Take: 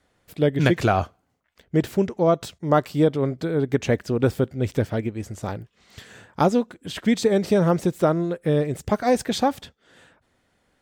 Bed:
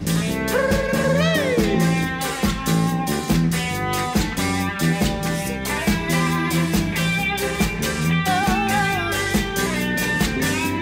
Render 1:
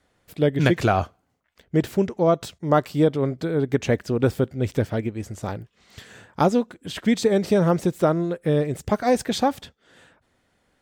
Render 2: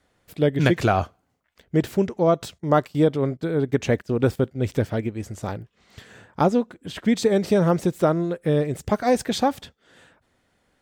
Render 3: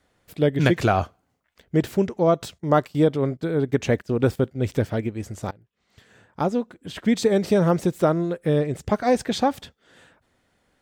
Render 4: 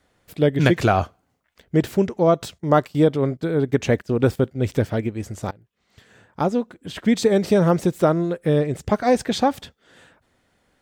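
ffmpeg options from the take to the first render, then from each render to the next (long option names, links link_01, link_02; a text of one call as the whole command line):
ffmpeg -i in.wav -af anull out.wav
ffmpeg -i in.wav -filter_complex "[0:a]asettb=1/sr,asplit=3[link_01][link_02][link_03];[link_01]atrim=end=2.604[link_04];[link_02]atrim=start=2.6:end=4.58,asetpts=PTS-STARTPTS,afade=type=in:duration=0.004:curve=qsin,afade=type=out:start_time=1.976:duration=0.004:curve=qsin,agate=range=-13dB:threshold=-37dB:ratio=16:release=100:detection=peak[link_05];[link_03]atrim=start=4.576[link_06];[link_04][link_05]acrossfade=duration=0.004:curve1=hsin:curve2=qsin[link_07];[link_07][link_06]acrossfade=duration=0.004:curve1=qsin:curve2=hsin,asettb=1/sr,asplit=3[link_08][link_09][link_10];[link_08]atrim=end=5.574[link_11];[link_09]atrim=start=5.57:end=7.16,asetpts=PTS-STARTPTS,afade=type=in:duration=0.004:curve=qsin,afade=type=out:start_time=1.586:duration=0.004:curve=qsin,highshelf=frequency=2600:gain=-5[link_12];[link_10]atrim=start=7.156[link_13];[link_11][link_12]acrossfade=duration=0.004:curve1=hsin:curve2=qsin[link_14];[link_14][link_13]acrossfade=duration=0.004:curve1=qsin:curve2=hsin" out.wav
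ffmpeg -i in.wav -filter_complex "[0:a]asettb=1/sr,asplit=3[link_01][link_02][link_03];[link_01]atrim=end=8.594[link_04];[link_02]atrim=start=8.59:end=9.54,asetpts=PTS-STARTPTS,afade=type=in:duration=0.004:curve=qsin,afade=type=out:start_time=0.946:duration=0.004:curve=qsin,highshelf=frequency=10000:gain=-9[link_05];[link_03]atrim=start=9.536[link_06];[link_04][link_05]acrossfade=duration=0.004:curve1=hsin:curve2=qsin[link_07];[link_07][link_06]acrossfade=duration=0.004:curve1=qsin:curve2=hsin,asplit=2[link_08][link_09];[link_08]atrim=end=5.51,asetpts=PTS-STARTPTS,afade=type=out:start_time=5.506:duration=0.004:curve=hsin:silence=0.0707946[link_10];[link_09]atrim=start=5.51,asetpts=PTS-STARTPTS,afade=type=in:duration=1.61:silence=0.0707946[link_11];[link_10][link_11]concat=n=2:v=0:a=1" out.wav
ffmpeg -i in.wav -af "volume=2dB" out.wav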